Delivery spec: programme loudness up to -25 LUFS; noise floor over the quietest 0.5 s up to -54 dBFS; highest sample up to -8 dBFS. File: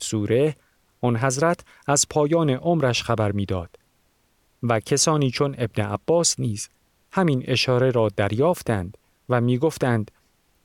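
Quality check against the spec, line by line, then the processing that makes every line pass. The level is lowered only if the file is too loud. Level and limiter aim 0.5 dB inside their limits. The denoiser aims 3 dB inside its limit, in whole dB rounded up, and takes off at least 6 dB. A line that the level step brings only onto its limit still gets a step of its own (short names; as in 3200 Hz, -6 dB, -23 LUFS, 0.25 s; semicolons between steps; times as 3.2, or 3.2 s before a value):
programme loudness -22.0 LUFS: fail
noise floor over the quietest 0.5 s -65 dBFS: OK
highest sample -5.0 dBFS: fail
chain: gain -3.5 dB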